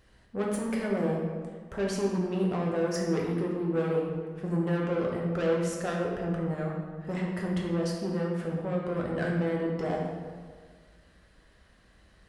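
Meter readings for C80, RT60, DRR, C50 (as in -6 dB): 3.5 dB, 1.7 s, -2.5 dB, 1.5 dB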